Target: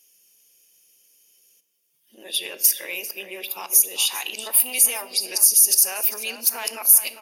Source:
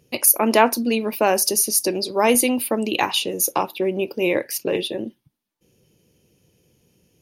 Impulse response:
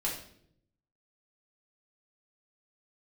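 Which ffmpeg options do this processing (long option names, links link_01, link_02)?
-filter_complex "[0:a]areverse,highpass=frequency=360:poles=1,bandreject=frequency=4100:width=8,asplit=2[link_01][link_02];[link_02]acontrast=30,volume=2dB[link_03];[link_01][link_03]amix=inputs=2:normalize=0,alimiter=limit=-6dB:level=0:latency=1:release=92,aderivative,asplit=2[link_04][link_05];[link_05]adelay=396.5,volume=-10dB,highshelf=frequency=4000:gain=-8.92[link_06];[link_04][link_06]amix=inputs=2:normalize=0,asplit=2[link_07][link_08];[1:a]atrim=start_sample=2205,lowshelf=frequency=170:gain=11.5[link_09];[link_08][link_09]afir=irnorm=-1:irlink=0,volume=-13dB[link_10];[link_07][link_10]amix=inputs=2:normalize=0,volume=-2dB"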